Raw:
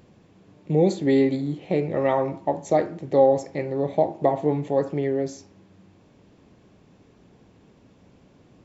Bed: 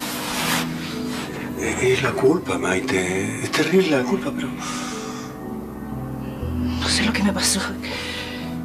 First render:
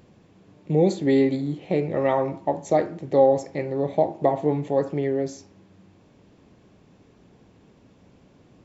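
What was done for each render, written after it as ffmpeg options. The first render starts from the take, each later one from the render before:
-af anull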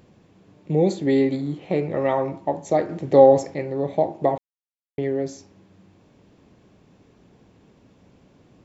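-filter_complex "[0:a]asettb=1/sr,asplit=3[a][b][c];[a]atrim=end=1.324[d];[b]atrim=start=1.32:end=1.96,asetpts=PTS-STARTPTS,afade=t=in:d=0.004:c=qsin,afade=t=out:st=0.636:d=0.004:c=qsin,equalizer=f=1.2k:w=1.5:g=4.5[e];[c]atrim=start=1.956[f];[d][e]acrossfade=d=0.004:c1=hsin:c2=qsin[g];[g][f]acrossfade=d=0.004:c1=qsin:c2=hsin,asplit=5[h][i][j][k][l];[h]atrim=end=2.892[m];[i]atrim=start=2.888:end=3.542,asetpts=PTS-STARTPTS,volume=5dB[n];[j]atrim=start=3.538:end=4.38,asetpts=PTS-STARTPTS,afade=t=out:st=0.838:d=0.004:c=hsin[o];[k]atrim=start=4.38:end=4.98,asetpts=PTS-STARTPTS,volume=0[p];[l]atrim=start=4.98,asetpts=PTS-STARTPTS,afade=t=in:d=0.004:c=hsin[q];[m][n]acrossfade=d=0.004:c1=hsin:c2=hsin[r];[o][p][q]concat=n=3:v=0:a=1[s];[r][s]acrossfade=d=0.004:c1=hsin:c2=hsin"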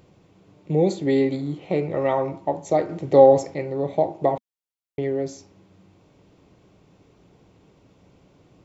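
-af "equalizer=f=230:w=6.8:g=-9.5,bandreject=f=1.7k:w=9.5"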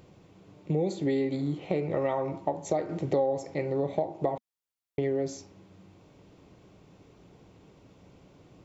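-af "acompressor=threshold=-25dB:ratio=5"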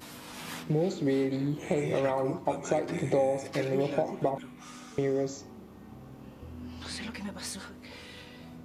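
-filter_complex "[1:a]volume=-19dB[a];[0:a][a]amix=inputs=2:normalize=0"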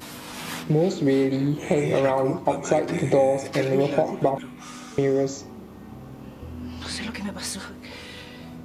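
-af "volume=7dB"

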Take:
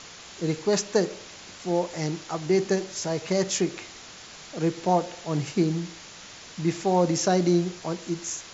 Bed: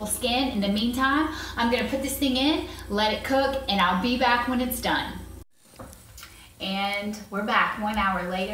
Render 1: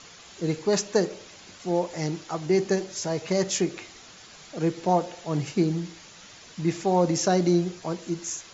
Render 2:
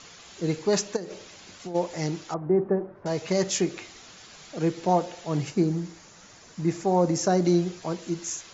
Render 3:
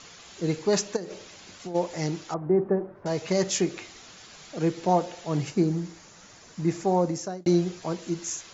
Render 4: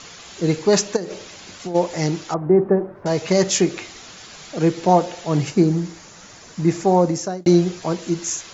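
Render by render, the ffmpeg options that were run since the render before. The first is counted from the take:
-af "afftdn=nr=6:nf=-45"
-filter_complex "[0:a]asplit=3[a][b][c];[a]afade=t=out:st=0.95:d=0.02[d];[b]acompressor=threshold=-31dB:ratio=8:attack=3.2:release=140:knee=1:detection=peak,afade=t=in:st=0.95:d=0.02,afade=t=out:st=1.74:d=0.02[e];[c]afade=t=in:st=1.74:d=0.02[f];[d][e][f]amix=inputs=3:normalize=0,asettb=1/sr,asplit=3[g][h][i];[g]atrim=end=2.344[j];[h]atrim=start=2.34:end=3.06,asetpts=PTS-STARTPTS,afade=t=in:d=0.004:c=qsin,afade=t=out:st=0.716:d=0.004:c=qsin,lowpass=f=1.3k:w=0.5412,lowpass=f=1.3k:w=1.3066[k];[i]atrim=start=3.056[l];[j][k]acrossfade=d=0.004:c1=hsin:c2=qsin[m];[m][l]acrossfade=d=0.004:c1=qsin:c2=hsin,asettb=1/sr,asplit=3[n][o][p];[n]atrim=end=5.504[q];[o]atrim=start=5.5:end=7.45,asetpts=PTS-STARTPTS,afade=t=in:d=0.004:c=qsin,afade=t=out:st=1.946:d=0.004:c=qsin,equalizer=f=3.2k:t=o:w=1.3:g=-7.5[r];[p]atrim=start=7.446[s];[q][r]acrossfade=d=0.004:c1=hsin:c2=qsin[t];[t][s]acrossfade=d=0.004:c1=qsin:c2=hsin"
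-filter_complex "[0:a]asplit=2[a][b];[a]atrim=end=7.46,asetpts=PTS-STARTPTS,afade=t=out:st=6.9:d=0.56[c];[b]atrim=start=7.46,asetpts=PTS-STARTPTS,afade=t=in:d=0.004:c=hsin[d];[c][d]concat=n=2:v=0:a=1"
-af "volume=7.5dB"

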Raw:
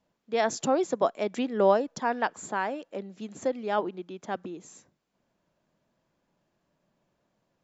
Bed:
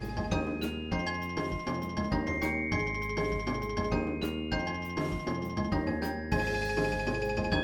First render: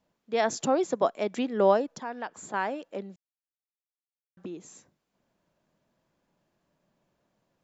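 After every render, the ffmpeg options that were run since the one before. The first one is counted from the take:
-filter_complex "[0:a]asettb=1/sr,asplit=3[a][b][c];[a]atrim=end=1.864[d];[b]atrim=start=1.86:end=2.54,asetpts=PTS-STARTPTS,afade=t=in:d=0.004:c=qsin,afade=t=out:st=0.676:d=0.004:c=qsin,acompressor=threshold=-45dB:ratio=1.5:attack=3.2:release=140:knee=1:detection=peak[e];[c]atrim=start=2.536[f];[d][e]acrossfade=d=0.004:c1=hsin:c2=qsin[g];[g][f]acrossfade=d=0.004:c1=qsin:c2=hsin,asplit=3[h][i][j];[h]atrim=end=3.16,asetpts=PTS-STARTPTS,afade=t=out:st=3.156:d=0.004:c=hsin[k];[i]atrim=start=3.16:end=4.37,asetpts=PTS-STARTPTS,volume=0[l];[j]atrim=start=4.37,asetpts=PTS-STARTPTS,afade=t=in:d=0.004:c=hsin[m];[k][l][m]concat=n=3:v=0:a=1"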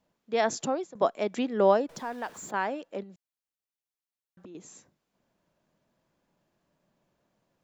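-filter_complex "[0:a]asettb=1/sr,asplit=3[a][b][c];[a]atrim=end=1.894[d];[b]atrim=start=1.89:end=2.51,asetpts=PTS-STARTPTS,afade=t=in:d=0.004:c=qsin,afade=t=out:st=0.616:d=0.004:c=qsin,aeval=exprs='val(0)+0.5*0.00422*sgn(val(0))':c=same[e];[c]atrim=start=2.506[f];[d][e]acrossfade=d=0.004:c1=hsin:c2=qsin[g];[g][f]acrossfade=d=0.004:c1=qsin:c2=hsin,asettb=1/sr,asplit=3[h][i][j];[h]atrim=end=3.034[k];[i]atrim=start=3.03:end=4.55,asetpts=PTS-STARTPTS,afade=t=in:d=0.004:c=qsin,afade=t=out:st=1.516:d=0.004:c=qsin,acompressor=threshold=-44dB:ratio=6:attack=3.2:release=140:knee=1:detection=peak[l];[j]atrim=start=4.546[m];[k][l]acrossfade=d=0.004:c1=hsin:c2=qsin[n];[n][m]acrossfade=d=0.004:c1=qsin:c2=hsin,asplit=2[o][p];[o]atrim=end=0.95,asetpts=PTS-STARTPTS,afade=t=out:st=0.54:d=0.41:silence=0.0794328[q];[p]atrim=start=0.95,asetpts=PTS-STARTPTS,afade=t=in:d=0.004:c=hsin:silence=0.0794328[r];[q][r]concat=n=2:v=0:a=1"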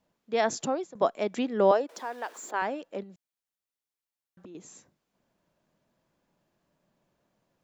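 -filter_complex "[0:a]asettb=1/sr,asplit=3[a][b][c];[a]atrim=end=1.714[d];[b]atrim=start=1.71:end=2.62,asetpts=PTS-STARTPTS,afade=t=in:d=0.004:c=qsin,afade=t=out:st=0.906:d=0.004:c=qsin,highpass=f=310:w=0.5412,highpass=f=310:w=1.3066[e];[c]atrim=start=2.616[f];[d][e]acrossfade=d=0.004:c1=hsin:c2=qsin[g];[g][f]acrossfade=d=0.004:c1=qsin:c2=hsin"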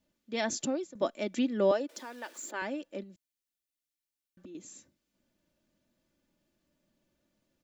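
-af "equalizer=f=900:t=o:w=1.6:g=-11,aecho=1:1:3.4:0.49"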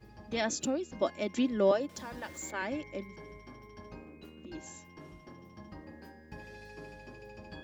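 -filter_complex "[1:a]volume=-18dB[a];[0:a][a]amix=inputs=2:normalize=0"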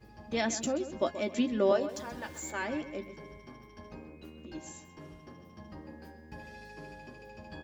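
-filter_complex "[0:a]asplit=2[a][b];[b]adelay=13,volume=-8dB[c];[a][c]amix=inputs=2:normalize=0,asplit=2[d][e];[e]adelay=130,lowpass=f=4.2k:p=1,volume=-12dB,asplit=2[f][g];[g]adelay=130,lowpass=f=4.2k:p=1,volume=0.37,asplit=2[h][i];[i]adelay=130,lowpass=f=4.2k:p=1,volume=0.37,asplit=2[j][k];[k]adelay=130,lowpass=f=4.2k:p=1,volume=0.37[l];[d][f][h][j][l]amix=inputs=5:normalize=0"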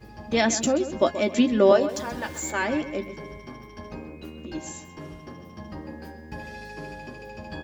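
-af "volume=9dB"

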